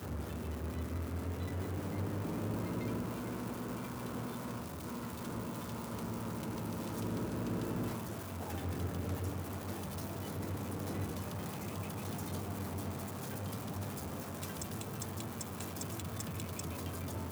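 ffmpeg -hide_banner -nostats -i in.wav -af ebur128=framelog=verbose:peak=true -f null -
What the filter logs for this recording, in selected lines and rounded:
Integrated loudness:
  I:         -40.2 LUFS
  Threshold: -50.2 LUFS
Loudness range:
  LRA:         2.3 LU
  Threshold: -60.1 LUFS
  LRA low:   -41.2 LUFS
  LRA high:  -38.9 LUFS
True peak:
  Peak:      -24.3 dBFS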